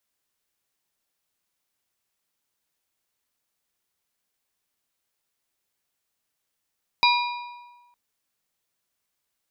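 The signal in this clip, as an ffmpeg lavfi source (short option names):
-f lavfi -i "aevalsrc='0.15*pow(10,-3*t/1.29)*sin(2*PI*968*t)+0.119*pow(10,-3*t/0.98)*sin(2*PI*2420*t)+0.0944*pow(10,-3*t/0.851)*sin(2*PI*3872*t)+0.075*pow(10,-3*t/0.796)*sin(2*PI*4840*t)':d=0.91:s=44100"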